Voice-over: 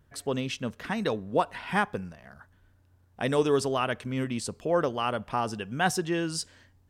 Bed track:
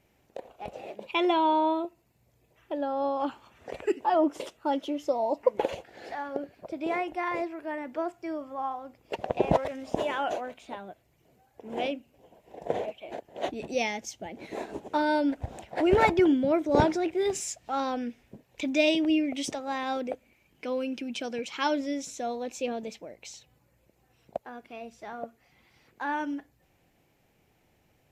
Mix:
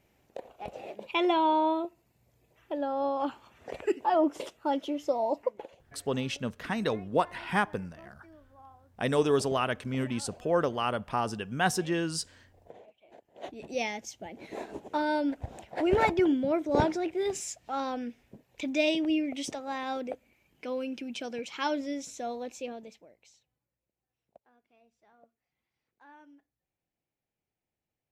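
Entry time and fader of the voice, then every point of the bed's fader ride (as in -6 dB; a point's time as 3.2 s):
5.80 s, -1.0 dB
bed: 5.38 s -1 dB
5.7 s -21 dB
12.9 s -21 dB
13.8 s -3 dB
22.42 s -3 dB
23.77 s -23.5 dB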